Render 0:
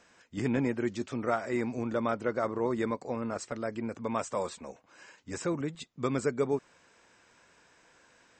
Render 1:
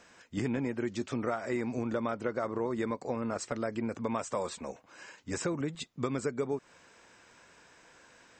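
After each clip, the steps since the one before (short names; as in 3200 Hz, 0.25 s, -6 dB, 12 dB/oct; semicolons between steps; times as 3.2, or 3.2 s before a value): compressor, threshold -32 dBFS, peak gain reduction 9 dB; gain +3.5 dB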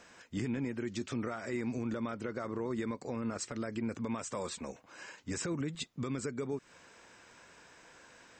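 dynamic EQ 720 Hz, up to -7 dB, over -47 dBFS, Q 0.91; limiter -27.5 dBFS, peak gain reduction 7 dB; gain +1 dB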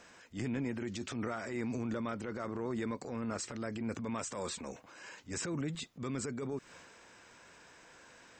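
transient shaper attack -9 dB, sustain +4 dB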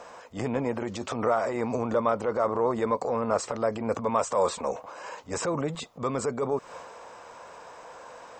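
band shelf 740 Hz +13 dB; gain +4.5 dB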